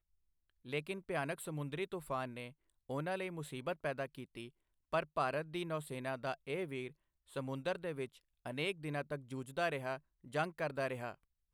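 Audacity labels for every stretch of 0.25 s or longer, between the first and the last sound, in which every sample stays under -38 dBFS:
2.460000	2.900000	silence
4.450000	4.930000	silence
6.870000	7.360000	silence
8.060000	8.460000	silence
9.960000	10.340000	silence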